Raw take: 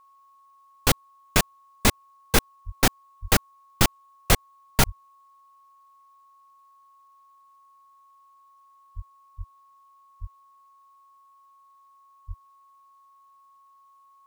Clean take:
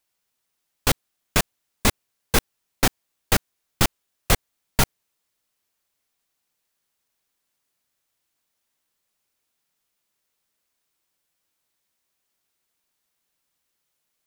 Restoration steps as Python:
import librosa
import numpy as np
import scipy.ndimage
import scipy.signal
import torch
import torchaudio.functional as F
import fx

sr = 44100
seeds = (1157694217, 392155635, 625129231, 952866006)

y = fx.notch(x, sr, hz=1100.0, q=30.0)
y = fx.fix_deplosive(y, sr, at_s=(2.65, 3.21, 4.85, 8.95, 9.37, 10.2, 12.27))